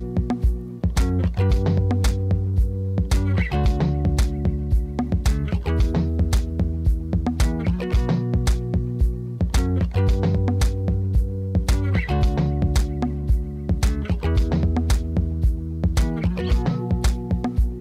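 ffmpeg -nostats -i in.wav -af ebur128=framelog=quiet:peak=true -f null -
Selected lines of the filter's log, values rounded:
Integrated loudness:
  I:         -22.7 LUFS
  Threshold: -32.7 LUFS
Loudness range:
  LRA:         1.3 LU
  Threshold: -42.6 LUFS
  LRA low:   -23.1 LUFS
  LRA high:  -21.9 LUFS
True peak:
  Peak:       -9.6 dBFS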